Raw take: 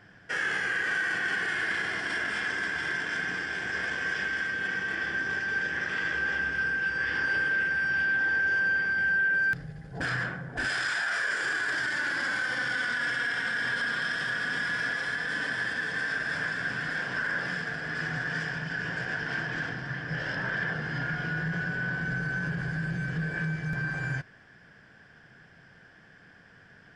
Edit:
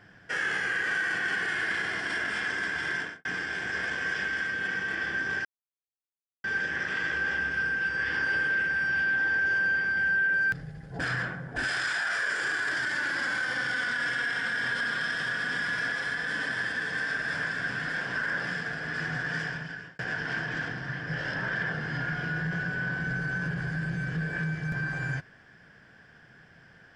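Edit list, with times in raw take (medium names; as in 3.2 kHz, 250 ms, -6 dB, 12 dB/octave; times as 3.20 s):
2.99–3.25 s: studio fade out
5.45 s: insert silence 0.99 s
18.48–19.00 s: fade out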